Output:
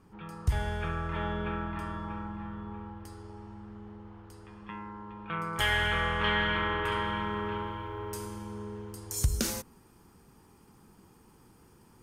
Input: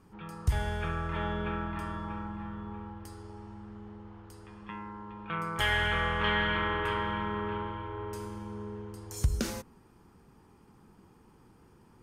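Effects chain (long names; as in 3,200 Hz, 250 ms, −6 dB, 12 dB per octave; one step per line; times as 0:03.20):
high-shelf EQ 4,900 Hz −2 dB, from 0:05.53 +4.5 dB, from 0:06.92 +11 dB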